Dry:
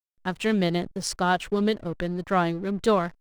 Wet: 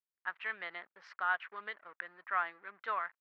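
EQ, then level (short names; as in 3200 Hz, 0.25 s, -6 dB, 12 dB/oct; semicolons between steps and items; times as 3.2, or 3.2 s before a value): ladder band-pass 1500 Hz, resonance 35%; air absorption 190 m; bell 1900 Hz +9 dB 0.98 oct; 0.0 dB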